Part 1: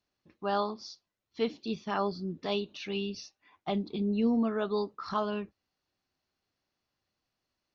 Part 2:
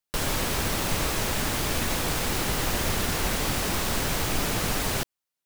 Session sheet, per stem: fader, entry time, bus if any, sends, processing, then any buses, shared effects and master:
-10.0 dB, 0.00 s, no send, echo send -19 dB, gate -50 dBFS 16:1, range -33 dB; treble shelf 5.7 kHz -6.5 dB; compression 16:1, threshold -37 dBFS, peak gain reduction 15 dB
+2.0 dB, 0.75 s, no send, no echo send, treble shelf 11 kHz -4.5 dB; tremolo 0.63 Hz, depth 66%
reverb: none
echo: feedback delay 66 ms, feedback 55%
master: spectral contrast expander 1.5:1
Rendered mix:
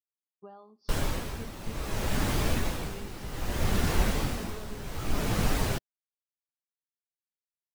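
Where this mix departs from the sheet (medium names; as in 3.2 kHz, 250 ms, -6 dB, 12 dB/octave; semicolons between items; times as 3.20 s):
stem 1 -10.0 dB -> -1.5 dB; stem 2: missing treble shelf 11 kHz -4.5 dB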